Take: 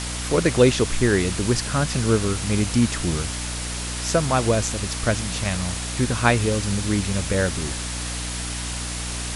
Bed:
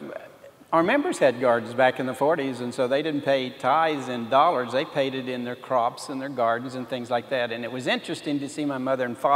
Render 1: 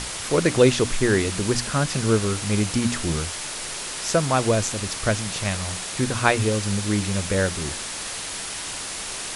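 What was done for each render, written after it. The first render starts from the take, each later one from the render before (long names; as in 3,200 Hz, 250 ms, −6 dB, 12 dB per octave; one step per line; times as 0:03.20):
mains-hum notches 60/120/180/240/300 Hz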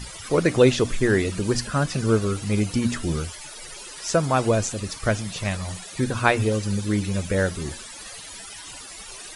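broadband denoise 16 dB, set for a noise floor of −32 dBFS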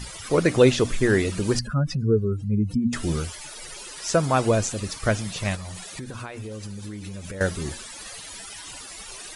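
0:01.59–0:02.93: expanding power law on the bin magnitudes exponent 2.2
0:05.55–0:07.41: downward compressor 16 to 1, threshold −31 dBFS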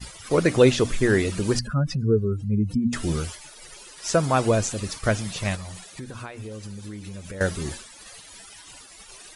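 downward expander −33 dBFS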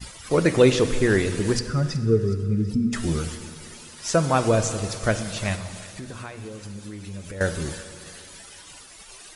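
feedback echo with a high-pass in the loop 371 ms, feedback 61%, high-pass 1,200 Hz, level −17 dB
dense smooth reverb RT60 2.4 s, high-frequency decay 0.8×, pre-delay 0 ms, DRR 10 dB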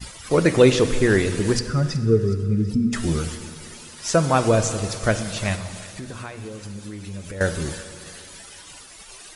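level +2 dB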